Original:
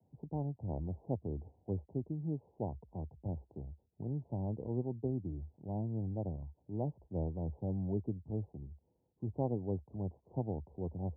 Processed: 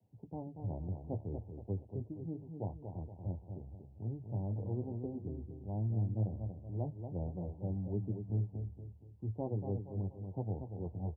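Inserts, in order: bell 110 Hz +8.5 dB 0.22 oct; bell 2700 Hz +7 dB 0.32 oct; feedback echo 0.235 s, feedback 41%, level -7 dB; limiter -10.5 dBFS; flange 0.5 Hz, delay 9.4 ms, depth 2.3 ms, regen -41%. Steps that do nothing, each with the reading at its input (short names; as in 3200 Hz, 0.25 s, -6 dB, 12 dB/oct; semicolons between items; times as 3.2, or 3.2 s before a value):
bell 2700 Hz: input band ends at 810 Hz; limiter -10.5 dBFS: input peak -20.5 dBFS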